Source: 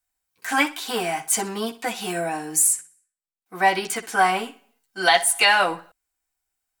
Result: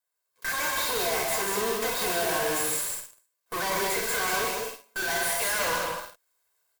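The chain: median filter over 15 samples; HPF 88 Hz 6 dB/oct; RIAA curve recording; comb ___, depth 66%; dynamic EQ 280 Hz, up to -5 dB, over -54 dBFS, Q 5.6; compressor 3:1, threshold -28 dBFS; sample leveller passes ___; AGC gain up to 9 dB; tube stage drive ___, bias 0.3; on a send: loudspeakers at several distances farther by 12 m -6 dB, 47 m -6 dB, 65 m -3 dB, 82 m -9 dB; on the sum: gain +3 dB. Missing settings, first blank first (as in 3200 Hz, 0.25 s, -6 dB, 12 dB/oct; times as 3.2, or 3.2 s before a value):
1.9 ms, 3, 32 dB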